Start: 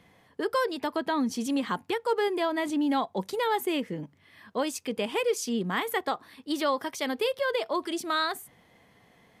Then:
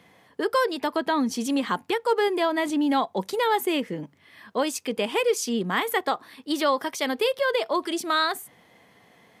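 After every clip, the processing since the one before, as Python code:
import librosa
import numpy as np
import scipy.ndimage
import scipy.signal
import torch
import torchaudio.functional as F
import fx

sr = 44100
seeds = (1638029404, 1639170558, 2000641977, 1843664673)

y = fx.highpass(x, sr, hz=180.0, slope=6)
y = y * 10.0 ** (4.5 / 20.0)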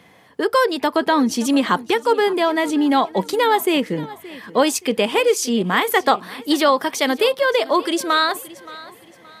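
y = fx.rider(x, sr, range_db=10, speed_s=0.5)
y = fx.echo_feedback(y, sr, ms=573, feedback_pct=36, wet_db=-19.0)
y = y * 10.0 ** (7.0 / 20.0)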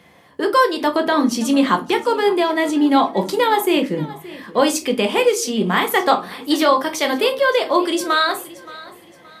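y = fx.room_shoebox(x, sr, seeds[0], volume_m3=130.0, walls='furnished', distance_m=0.85)
y = y * 10.0 ** (-1.0 / 20.0)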